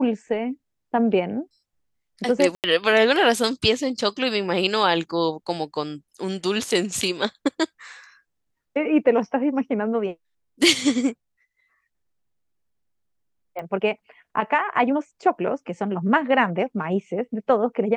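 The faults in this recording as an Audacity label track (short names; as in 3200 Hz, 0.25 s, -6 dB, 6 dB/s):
2.550000	2.640000	gap 88 ms
13.590000	13.590000	pop -21 dBFS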